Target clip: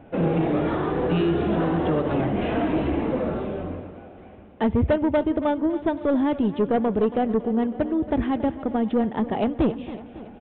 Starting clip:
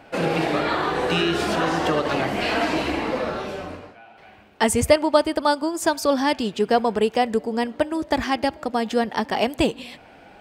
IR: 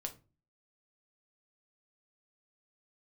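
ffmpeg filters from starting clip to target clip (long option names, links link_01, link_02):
-af "tiltshelf=frequency=660:gain=9.5,aresample=8000,asoftclip=type=tanh:threshold=-12.5dB,aresample=44100,aecho=1:1:277|554|831|1108|1385|1662:0.178|0.105|0.0619|0.0365|0.0215|0.0127,volume=-2dB"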